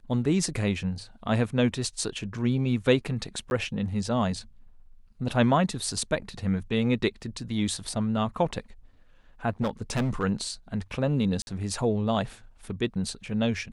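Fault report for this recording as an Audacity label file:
3.500000	3.510000	gap 11 ms
9.610000	10.240000	clipped -22.5 dBFS
11.420000	11.470000	gap 51 ms

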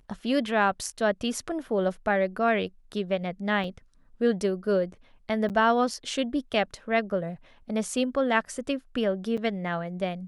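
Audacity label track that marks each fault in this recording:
3.640000	3.640000	gap 2.7 ms
5.490000	5.500000	gap 8.4 ms
9.370000	9.380000	gap 6.1 ms

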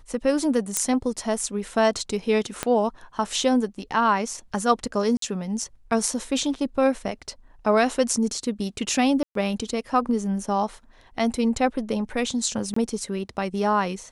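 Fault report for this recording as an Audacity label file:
0.770000	0.770000	pop -6 dBFS
2.630000	2.630000	pop -9 dBFS
5.170000	5.220000	gap 53 ms
9.230000	9.350000	gap 0.123 s
12.740000	12.760000	gap 24 ms

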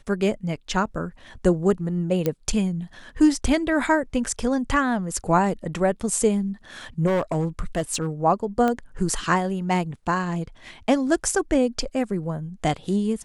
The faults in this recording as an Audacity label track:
2.260000	2.260000	pop -10 dBFS
7.060000	8.070000	clipped -18.5 dBFS
8.680000	8.680000	pop -12 dBFS

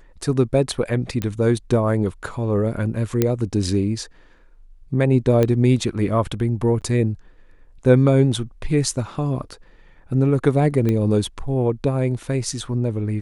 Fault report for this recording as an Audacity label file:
1.220000	1.220000	pop -11 dBFS
3.220000	3.220000	pop -4 dBFS
5.430000	5.430000	pop -8 dBFS
6.810000	6.820000	gap 8 ms
10.890000	10.890000	pop -11 dBFS

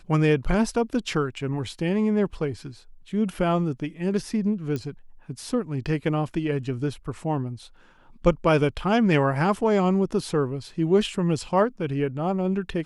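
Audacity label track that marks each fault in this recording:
4.760000	4.760000	pop -18 dBFS

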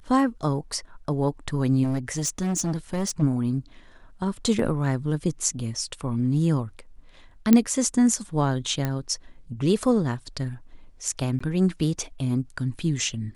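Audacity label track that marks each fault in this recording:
1.830000	3.230000	clipped -22 dBFS
4.590000	4.590000	gap 2.8 ms
7.530000	7.530000	pop -4 dBFS
8.850000	8.850000	pop -13 dBFS
11.390000	11.400000	gap 15 ms

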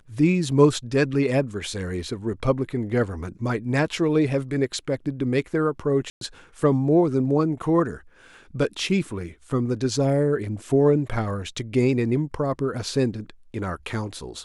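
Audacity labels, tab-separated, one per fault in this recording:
6.100000	6.210000	gap 0.112 s

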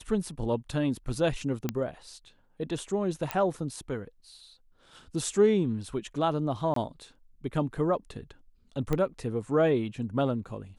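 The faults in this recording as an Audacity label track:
1.690000	1.690000	pop -14 dBFS
3.310000	3.310000	pop -13 dBFS
6.740000	6.760000	gap 23 ms
8.930000	8.930000	pop -16 dBFS

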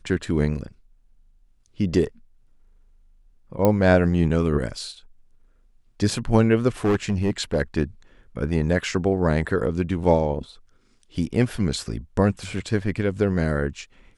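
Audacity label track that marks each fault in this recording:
3.650000	3.650000	pop -7 dBFS
6.840000	7.620000	clipped -16 dBFS

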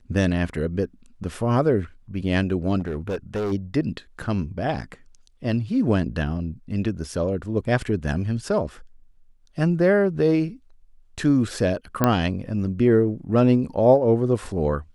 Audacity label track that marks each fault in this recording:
2.800000	3.530000	clipped -22.5 dBFS
12.040000	12.040000	pop -5 dBFS

